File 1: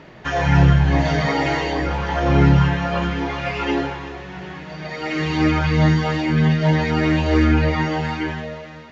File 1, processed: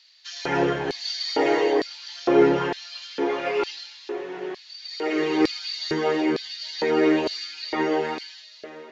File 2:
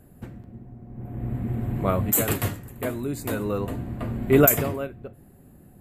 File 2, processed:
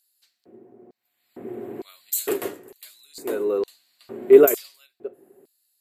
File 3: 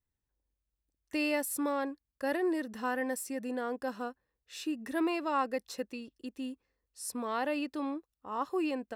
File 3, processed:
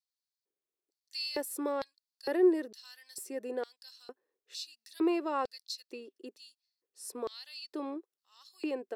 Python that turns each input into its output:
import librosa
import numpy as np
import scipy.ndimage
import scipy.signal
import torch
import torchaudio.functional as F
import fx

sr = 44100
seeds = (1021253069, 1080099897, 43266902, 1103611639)

y = fx.filter_lfo_highpass(x, sr, shape='square', hz=1.1, low_hz=390.0, high_hz=4400.0, q=5.3)
y = F.gain(torch.from_numpy(y), -4.5).numpy()